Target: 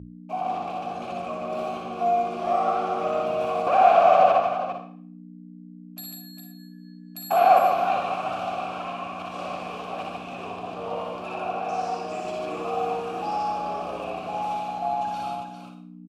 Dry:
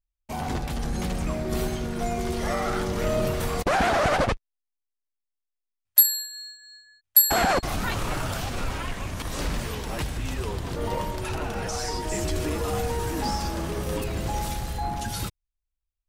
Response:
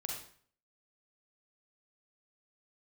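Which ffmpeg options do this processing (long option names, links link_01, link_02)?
-filter_complex "[0:a]asplit=3[link_01][link_02][link_03];[link_01]bandpass=frequency=730:width_type=q:width=8,volume=0dB[link_04];[link_02]bandpass=frequency=1090:width_type=q:width=8,volume=-6dB[link_05];[link_03]bandpass=frequency=2440:width_type=q:width=8,volume=-9dB[link_06];[link_04][link_05][link_06]amix=inputs=3:normalize=0,aecho=1:1:60|146|403|457:0.668|0.631|0.422|0.178,asplit=2[link_07][link_08];[1:a]atrim=start_sample=2205[link_09];[link_08][link_09]afir=irnorm=-1:irlink=0,volume=1.5dB[link_10];[link_07][link_10]amix=inputs=2:normalize=0,aeval=exprs='val(0)+0.0141*(sin(2*PI*60*n/s)+sin(2*PI*2*60*n/s)/2+sin(2*PI*3*60*n/s)/3+sin(2*PI*4*60*n/s)/4+sin(2*PI*5*60*n/s)/5)':channel_layout=same,highpass=74,bandreject=frequency=60:width_type=h:width=6,bandreject=frequency=120:width_type=h:width=6,volume=3dB"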